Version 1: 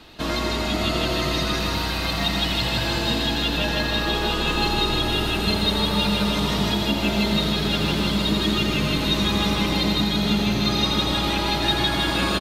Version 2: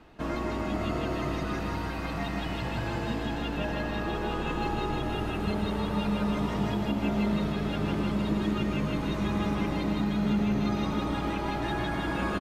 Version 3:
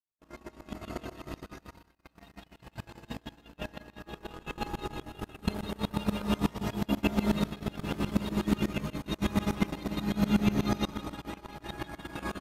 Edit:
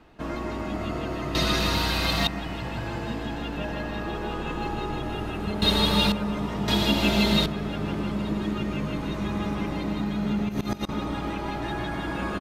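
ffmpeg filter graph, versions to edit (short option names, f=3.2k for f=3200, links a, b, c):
-filter_complex "[0:a]asplit=3[a][b][c];[1:a]asplit=5[d][e][f][g][h];[d]atrim=end=1.352[i];[a]atrim=start=1.348:end=2.272[j];[e]atrim=start=2.268:end=5.622[k];[b]atrim=start=5.618:end=6.122[l];[f]atrim=start=6.118:end=6.682[m];[c]atrim=start=6.678:end=7.462[n];[g]atrim=start=7.458:end=10.492[o];[2:a]atrim=start=10.488:end=10.892[p];[h]atrim=start=10.888[q];[i][j]acrossfade=d=0.004:c1=hsin:c2=hsin[r];[r][k]acrossfade=d=0.004:c1=hsin:c2=hsin[s];[s][l]acrossfade=d=0.004:c1=hsin:c2=hsin[t];[t][m]acrossfade=d=0.004:c1=hsin:c2=hsin[u];[u][n]acrossfade=d=0.004:c1=hsin:c2=hsin[v];[v][o]acrossfade=d=0.004:c1=hsin:c2=hsin[w];[w][p]acrossfade=d=0.004:c1=hsin:c2=hsin[x];[x][q]acrossfade=d=0.004:c1=hsin:c2=hsin"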